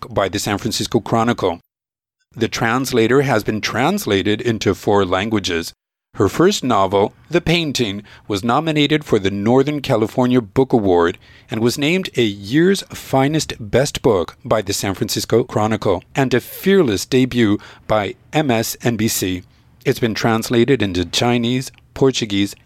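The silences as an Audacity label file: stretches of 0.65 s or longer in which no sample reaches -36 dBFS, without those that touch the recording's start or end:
1.570000	2.360000	silence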